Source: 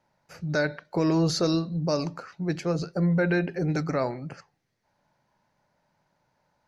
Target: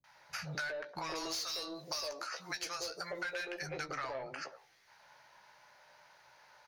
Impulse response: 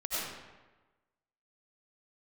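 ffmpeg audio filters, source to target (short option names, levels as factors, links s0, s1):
-filter_complex "[0:a]asettb=1/sr,asplit=3[s0][s1][s2];[s0]atrim=end=1.114[s3];[s1]atrim=start=1.11:end=3.62,asetpts=PTS-STARTPTS,afade=t=in:d=0.004:c=qsin,afade=t=out:st=2.506:d=0.004:c=qsin,bass=f=250:g=-13,treble=f=4000:g=14[s4];[s2]atrim=start=3.616[s5];[s3][s4]acrossfade=d=0.004:c1=hsin:c2=qsin[s6];[s6][s5]acrossfade=d=0.004:c1=qsin:c2=hsin,acrossover=split=230|750[s7][s8][s9];[s9]adelay=40[s10];[s8]adelay=150[s11];[s7][s11][s10]amix=inputs=3:normalize=0,asplit=2[s12][s13];[s13]highpass=f=720:p=1,volume=15.8,asoftclip=type=tanh:threshold=0.398[s14];[s12][s14]amix=inputs=2:normalize=0,lowpass=f=6000:p=1,volume=0.501,equalizer=f=230:w=0.69:g=-12.5,bandreject=f=7700:w=5.4,asplit=2[s15][s16];[s16]adelay=15,volume=0.398[s17];[s15][s17]amix=inputs=2:normalize=0,acompressor=threshold=0.0141:ratio=6,volume=0.794"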